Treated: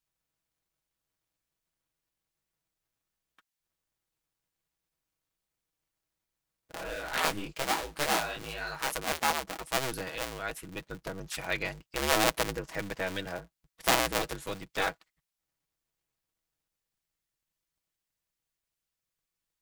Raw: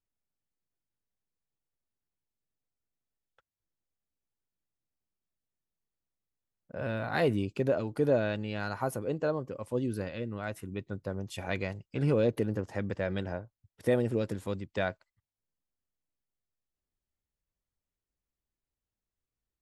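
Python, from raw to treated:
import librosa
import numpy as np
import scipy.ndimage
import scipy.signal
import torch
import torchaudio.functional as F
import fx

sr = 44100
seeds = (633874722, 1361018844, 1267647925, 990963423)

y = fx.cycle_switch(x, sr, every=2, mode='inverted')
y = fx.tilt_shelf(y, sr, db=-6.5, hz=820.0)
y = y + 0.44 * np.pad(y, (int(6.2 * sr / 1000.0), 0))[:len(y)]
y = fx.detune_double(y, sr, cents=fx.line((6.76, 58.0), (8.92, 39.0)), at=(6.76, 8.92), fade=0.02)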